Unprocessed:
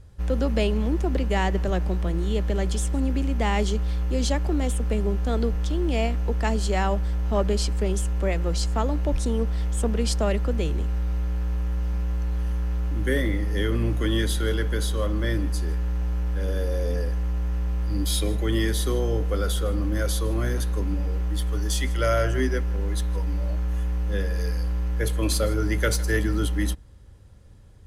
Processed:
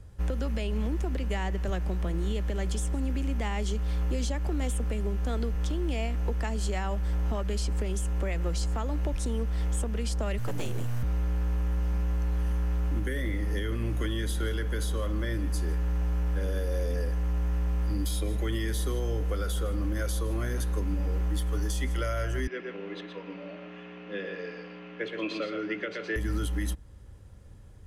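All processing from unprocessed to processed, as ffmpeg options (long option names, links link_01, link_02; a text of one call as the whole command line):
ffmpeg -i in.wav -filter_complex "[0:a]asettb=1/sr,asplit=3[link_01][link_02][link_03];[link_01]atrim=end=10.384[link_04];[link_02]atrim=start=10.38:end=11.03,asetpts=PTS-STARTPTS,afade=type=in:duration=0.004:curve=qsin,afade=type=out:start_time=0.646:duration=0.004:curve=qsin,highshelf=frequency=5600:gain=11,aeval=exprs='abs(val(0))':channel_layout=same[link_05];[link_03]atrim=start=11.026[link_06];[link_04][link_05]acrossfade=duration=0.004:curve1=hsin:curve2=qsin[link_07];[link_07][link_06]acrossfade=duration=0.004:curve1=qsin:curve2=hsin,asettb=1/sr,asplit=3[link_08][link_09][link_10];[link_08]atrim=end=22.474[link_11];[link_09]atrim=start=22.47:end=26.16,asetpts=PTS-STARTPTS,afade=type=in:duration=0.004:curve=qsin,afade=type=out:start_time=3.686:duration=0.004:curve=qsin,highpass=frequency=230:width=0.5412,highpass=frequency=230:width=1.3066,equalizer=frequency=260:width_type=q:width=4:gain=-5,equalizer=frequency=500:width_type=q:width=4:gain=-3,equalizer=frequency=880:width_type=q:width=4:gain=-9,equalizer=frequency=1500:width_type=q:width=4:gain=-4,equalizer=frequency=2600:width_type=q:width=4:gain=6,lowpass=frequency=3500:width=0.5412,lowpass=frequency=3500:width=1.3066,aecho=1:1:121:0.473,atrim=end_sample=162729[link_12];[link_10]atrim=start=26.156[link_13];[link_11][link_12]acrossfade=duration=0.004:curve1=hsin:curve2=qsin[link_14];[link_14][link_13]acrossfade=duration=0.004:curve1=qsin:curve2=hsin,acrossover=split=150|1300[link_15][link_16][link_17];[link_15]acompressor=threshold=-25dB:ratio=4[link_18];[link_16]acompressor=threshold=-31dB:ratio=4[link_19];[link_17]acompressor=threshold=-33dB:ratio=4[link_20];[link_18][link_19][link_20]amix=inputs=3:normalize=0,equalizer=frequency=4200:width_type=o:width=0.77:gain=-3.5,alimiter=limit=-20.5dB:level=0:latency=1:release=292" out.wav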